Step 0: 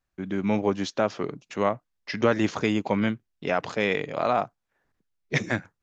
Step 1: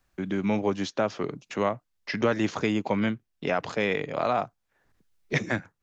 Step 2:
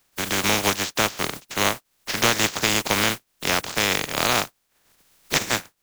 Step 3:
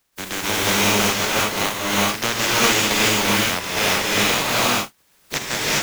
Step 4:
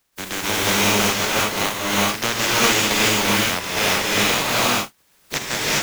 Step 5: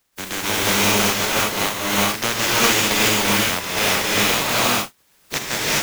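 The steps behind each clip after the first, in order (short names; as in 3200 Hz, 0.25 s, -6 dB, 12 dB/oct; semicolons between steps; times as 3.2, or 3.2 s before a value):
three-band squash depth 40%; gain -1.5 dB
spectral contrast lowered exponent 0.25; gain +4.5 dB
non-linear reverb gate 0.44 s rising, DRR -7.5 dB; gain -4 dB
nothing audible
modulation noise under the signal 10 dB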